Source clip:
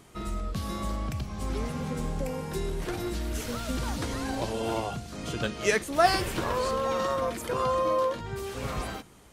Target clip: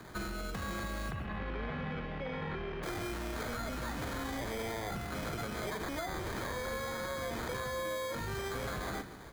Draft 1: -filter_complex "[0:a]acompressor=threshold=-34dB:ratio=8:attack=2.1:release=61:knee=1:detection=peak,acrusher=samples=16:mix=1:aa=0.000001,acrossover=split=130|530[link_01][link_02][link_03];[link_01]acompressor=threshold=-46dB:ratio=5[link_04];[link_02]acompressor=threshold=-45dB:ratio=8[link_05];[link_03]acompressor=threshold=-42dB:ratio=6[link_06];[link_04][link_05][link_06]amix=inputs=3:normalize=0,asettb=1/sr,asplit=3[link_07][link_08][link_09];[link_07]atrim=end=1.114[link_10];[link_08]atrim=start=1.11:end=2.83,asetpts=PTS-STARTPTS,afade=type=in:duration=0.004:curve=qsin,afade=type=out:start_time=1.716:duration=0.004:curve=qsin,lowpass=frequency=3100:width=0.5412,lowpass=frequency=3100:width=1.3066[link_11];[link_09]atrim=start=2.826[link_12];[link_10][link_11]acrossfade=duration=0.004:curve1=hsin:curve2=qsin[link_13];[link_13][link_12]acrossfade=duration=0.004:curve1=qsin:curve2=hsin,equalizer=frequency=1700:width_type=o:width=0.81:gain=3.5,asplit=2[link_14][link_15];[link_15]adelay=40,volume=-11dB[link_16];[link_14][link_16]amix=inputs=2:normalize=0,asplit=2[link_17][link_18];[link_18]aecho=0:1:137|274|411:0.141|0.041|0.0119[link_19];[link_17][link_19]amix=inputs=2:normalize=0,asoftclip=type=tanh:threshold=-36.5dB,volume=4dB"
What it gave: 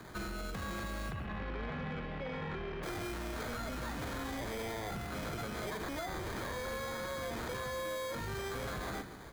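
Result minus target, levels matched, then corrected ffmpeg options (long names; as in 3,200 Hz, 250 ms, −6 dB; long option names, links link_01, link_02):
soft clipping: distortion +10 dB
-filter_complex "[0:a]acompressor=threshold=-34dB:ratio=8:attack=2.1:release=61:knee=1:detection=peak,acrusher=samples=16:mix=1:aa=0.000001,acrossover=split=130|530[link_01][link_02][link_03];[link_01]acompressor=threshold=-46dB:ratio=5[link_04];[link_02]acompressor=threshold=-45dB:ratio=8[link_05];[link_03]acompressor=threshold=-42dB:ratio=6[link_06];[link_04][link_05][link_06]amix=inputs=3:normalize=0,asettb=1/sr,asplit=3[link_07][link_08][link_09];[link_07]atrim=end=1.114[link_10];[link_08]atrim=start=1.11:end=2.83,asetpts=PTS-STARTPTS,afade=type=in:duration=0.004:curve=qsin,afade=type=out:start_time=1.716:duration=0.004:curve=qsin,lowpass=frequency=3100:width=0.5412,lowpass=frequency=3100:width=1.3066[link_11];[link_09]atrim=start=2.826[link_12];[link_10][link_11]acrossfade=duration=0.004:curve1=hsin:curve2=qsin[link_13];[link_13][link_12]acrossfade=duration=0.004:curve1=qsin:curve2=hsin,equalizer=frequency=1700:width_type=o:width=0.81:gain=3.5,asplit=2[link_14][link_15];[link_15]adelay=40,volume=-11dB[link_16];[link_14][link_16]amix=inputs=2:normalize=0,asplit=2[link_17][link_18];[link_18]aecho=0:1:137|274|411:0.141|0.041|0.0119[link_19];[link_17][link_19]amix=inputs=2:normalize=0,asoftclip=type=tanh:threshold=-29.5dB,volume=4dB"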